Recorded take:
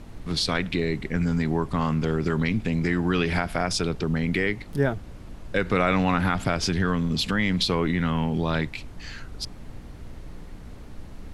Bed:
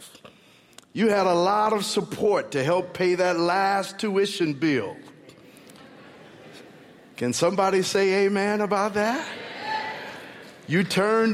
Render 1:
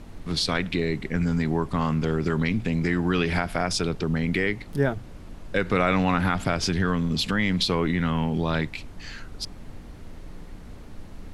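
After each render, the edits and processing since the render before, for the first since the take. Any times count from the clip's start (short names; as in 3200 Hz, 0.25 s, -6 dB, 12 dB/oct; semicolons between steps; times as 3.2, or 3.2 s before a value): de-hum 60 Hz, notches 2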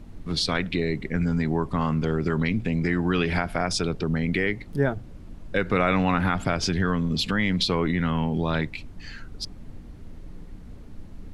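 denoiser 7 dB, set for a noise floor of -42 dBFS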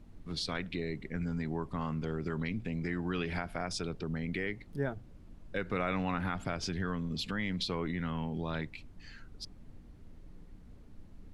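gain -11 dB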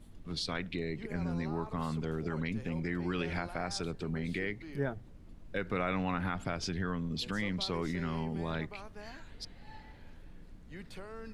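add bed -26 dB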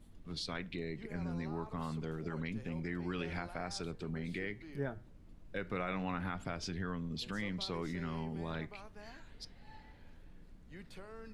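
flange 0.3 Hz, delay 3.9 ms, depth 3.4 ms, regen -88%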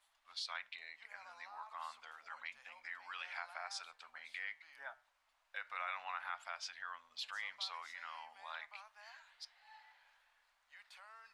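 inverse Chebyshev high-pass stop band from 410 Hz, stop band 40 dB; high shelf 8600 Hz -8 dB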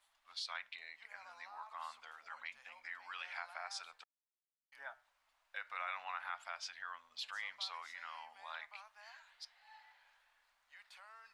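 4.04–4.72 mute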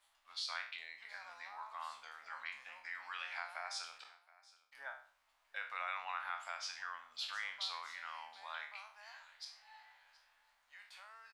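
spectral trails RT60 0.44 s; echo 0.722 s -21.5 dB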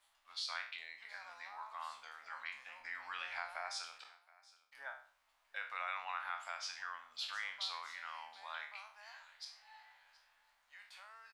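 2.8–3.71 low shelf 430 Hz +9 dB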